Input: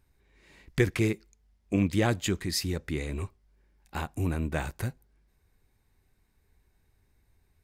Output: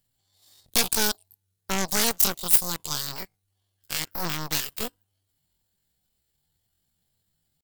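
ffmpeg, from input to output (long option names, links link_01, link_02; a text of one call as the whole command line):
ffmpeg -i in.wav -af "asetrate=85689,aresample=44100,atempo=0.514651,aeval=exprs='0.266*(cos(1*acos(clip(val(0)/0.266,-1,1)))-cos(1*PI/2))+0.119*(cos(4*acos(clip(val(0)/0.266,-1,1)))-cos(4*PI/2))+0.119*(cos(8*acos(clip(val(0)/0.266,-1,1)))-cos(8*PI/2))':channel_layout=same,crystalizer=i=6.5:c=0,volume=-12.5dB" out.wav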